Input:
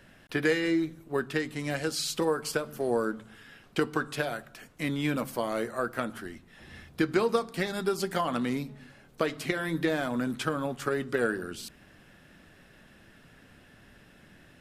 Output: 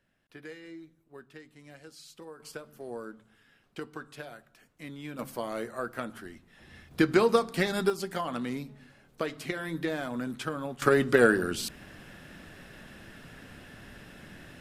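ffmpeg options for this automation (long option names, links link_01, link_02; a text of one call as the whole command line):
ffmpeg -i in.wav -af "asetnsamples=nb_out_samples=441:pad=0,asendcmd='2.4 volume volume -12dB;5.19 volume volume -4dB;6.91 volume volume 3dB;7.9 volume volume -4dB;10.82 volume volume 7dB',volume=-19dB" out.wav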